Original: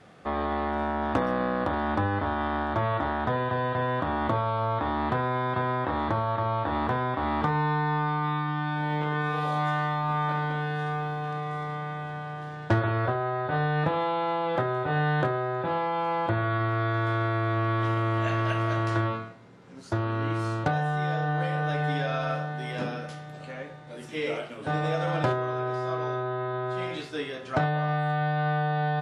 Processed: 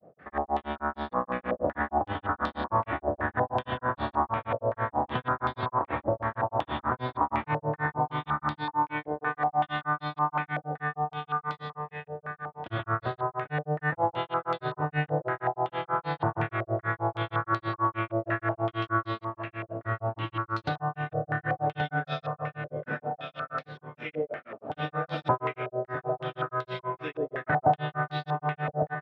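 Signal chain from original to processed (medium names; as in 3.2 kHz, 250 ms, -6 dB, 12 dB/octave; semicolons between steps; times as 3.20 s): feedback delay 1178 ms, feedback 32%, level -6 dB; granulator 146 ms, grains 6.3 per s, pitch spread up and down by 0 st; step-sequenced low-pass 5.3 Hz 590–4200 Hz; trim -2.5 dB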